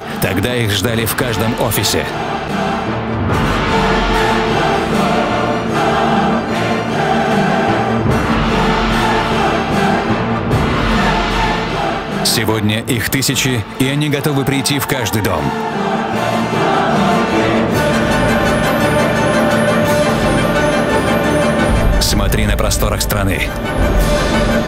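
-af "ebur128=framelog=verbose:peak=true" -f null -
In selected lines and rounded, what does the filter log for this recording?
Integrated loudness:
  I:         -14.5 LUFS
  Threshold: -24.5 LUFS
Loudness range:
  LRA:         2.2 LU
  Threshold: -34.4 LUFS
  LRA low:   -15.4 LUFS
  LRA high:  -13.2 LUFS
True peak:
  Peak:       -2.5 dBFS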